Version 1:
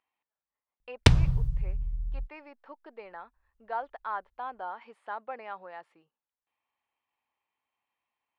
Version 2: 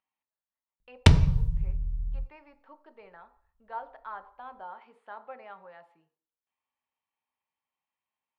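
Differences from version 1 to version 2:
speech −6.0 dB
reverb: on, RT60 0.50 s

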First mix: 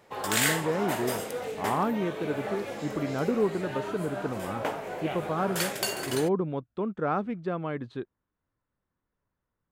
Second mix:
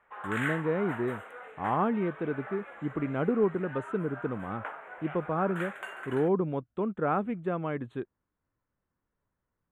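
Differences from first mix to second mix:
background: add resonant band-pass 1,400 Hz, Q 2.3
master: add Butterworth band-reject 5,000 Hz, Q 1.1

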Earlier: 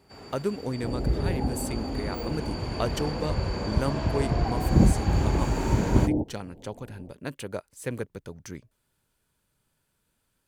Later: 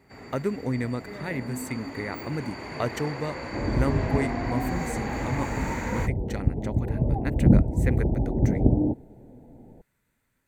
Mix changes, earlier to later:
second sound: entry +2.70 s
master: add thirty-one-band graphic EQ 125 Hz +4 dB, 250 Hz +5 dB, 2,000 Hz +11 dB, 3,150 Hz −7 dB, 5,000 Hz −8 dB, 10,000 Hz −8 dB

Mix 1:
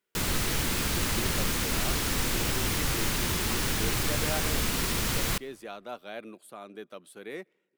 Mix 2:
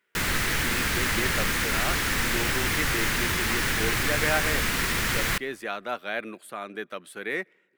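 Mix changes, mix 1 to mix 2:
speech +5.5 dB
master: add parametric band 1,800 Hz +10 dB 1.1 octaves

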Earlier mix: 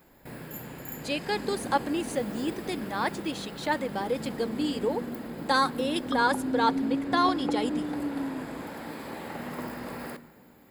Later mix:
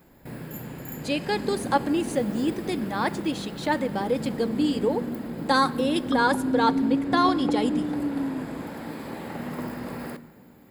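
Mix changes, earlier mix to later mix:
speech: send +8.5 dB
master: add parametric band 140 Hz +6 dB 2.9 octaves

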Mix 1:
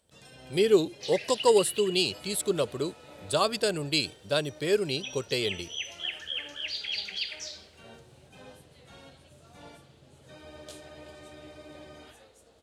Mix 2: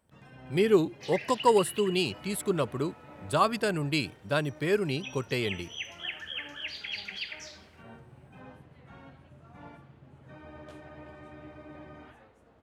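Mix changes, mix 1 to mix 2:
first sound: add low-pass filter 2,000 Hz 6 dB per octave
master: add octave-band graphic EQ 125/250/500/1,000/2,000/4,000/8,000 Hz +4/+4/−5/+5/+4/−8/−6 dB

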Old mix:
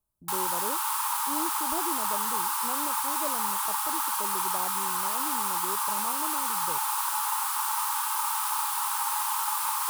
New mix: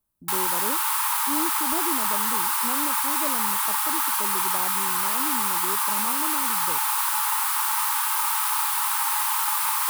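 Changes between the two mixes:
background: add high-shelf EQ 9,600 Hz +8 dB
master: add octave-band graphic EQ 250/2,000/4,000 Hz +8/+9/+3 dB

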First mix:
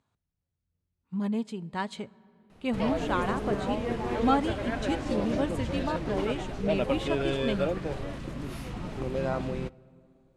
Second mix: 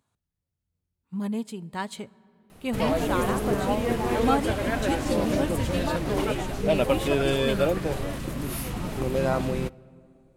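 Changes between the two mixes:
background +5.0 dB
master: remove high-frequency loss of the air 76 metres

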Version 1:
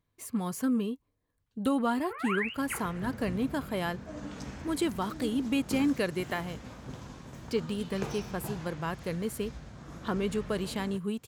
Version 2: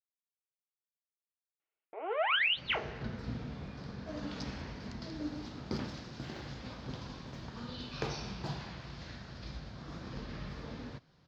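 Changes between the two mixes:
speech: muted
first sound: remove phaser with its sweep stopped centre 1,500 Hz, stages 4
master: add high shelf with overshoot 6,600 Hz −13.5 dB, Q 3

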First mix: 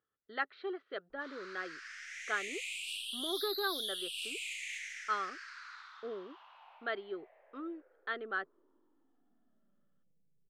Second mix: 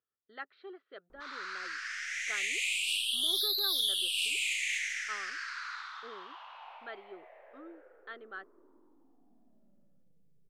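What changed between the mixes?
speech −8.0 dB
background +9.0 dB

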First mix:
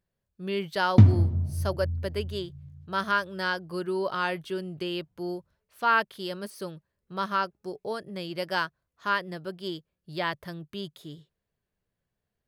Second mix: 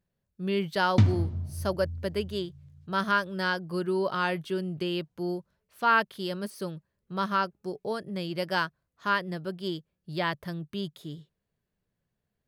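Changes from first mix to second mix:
speech: add parametric band 180 Hz +4.5 dB 1.4 octaves
background: add tilt shelving filter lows −6 dB, about 1,300 Hz

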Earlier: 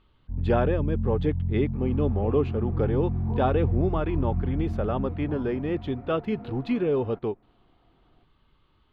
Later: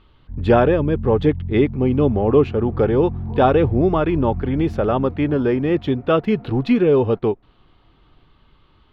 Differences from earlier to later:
speech +9.5 dB
master: remove notch filter 5,500 Hz, Q 19

